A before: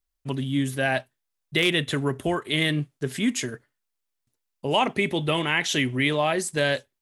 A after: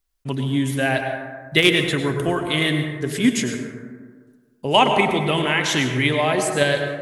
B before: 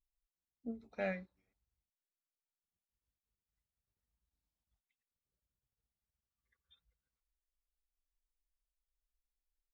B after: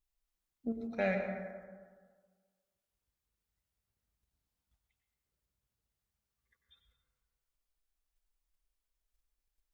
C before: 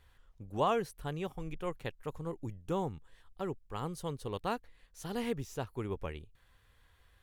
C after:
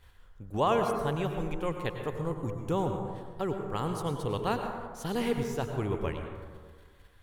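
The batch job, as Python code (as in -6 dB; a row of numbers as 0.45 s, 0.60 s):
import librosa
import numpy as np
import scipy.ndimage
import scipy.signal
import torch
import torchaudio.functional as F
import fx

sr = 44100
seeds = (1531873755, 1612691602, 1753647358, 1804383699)

p1 = fx.level_steps(x, sr, step_db=21)
p2 = x + F.gain(torch.from_numpy(p1), 0.5).numpy()
p3 = fx.rev_plate(p2, sr, seeds[0], rt60_s=1.6, hf_ratio=0.35, predelay_ms=85, drr_db=4.5)
y = F.gain(torch.from_numpy(p3), 1.5).numpy()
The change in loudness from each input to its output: +5.0 LU, +5.5 LU, +6.0 LU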